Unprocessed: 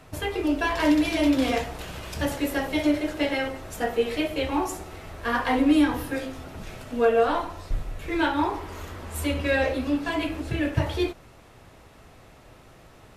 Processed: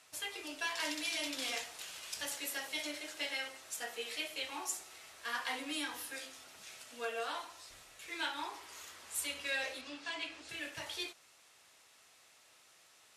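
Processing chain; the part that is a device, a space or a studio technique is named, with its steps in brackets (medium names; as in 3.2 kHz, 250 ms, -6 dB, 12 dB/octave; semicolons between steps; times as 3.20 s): 9.81–10.49 s: low-pass 5.9 kHz 12 dB/octave; piezo pickup straight into a mixer (low-pass 8.6 kHz 12 dB/octave; differentiator); trim +2 dB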